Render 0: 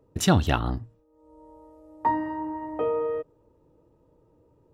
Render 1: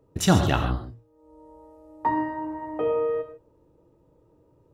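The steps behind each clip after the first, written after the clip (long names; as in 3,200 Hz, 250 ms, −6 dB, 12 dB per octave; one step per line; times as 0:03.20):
reverb whose tail is shaped and stops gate 170 ms flat, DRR 5.5 dB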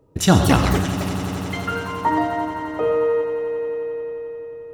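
delay with pitch and tempo change per echo 308 ms, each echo +7 semitones, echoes 3, each echo −6 dB
on a send: echo that builds up and dies away 88 ms, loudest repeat 5, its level −17 dB
on the sum: level +4.5 dB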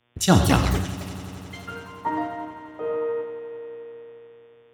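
hum with harmonics 120 Hz, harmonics 30, −45 dBFS −3 dB per octave
multiband upward and downward expander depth 70%
level −7.5 dB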